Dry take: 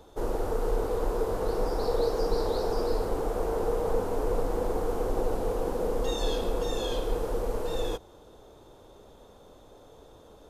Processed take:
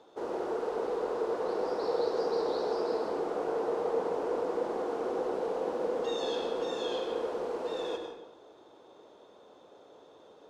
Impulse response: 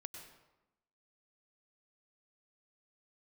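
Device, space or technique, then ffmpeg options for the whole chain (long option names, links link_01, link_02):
supermarket ceiling speaker: -filter_complex "[0:a]highpass=280,lowpass=5000[link_01];[1:a]atrim=start_sample=2205[link_02];[link_01][link_02]afir=irnorm=-1:irlink=0,volume=3dB"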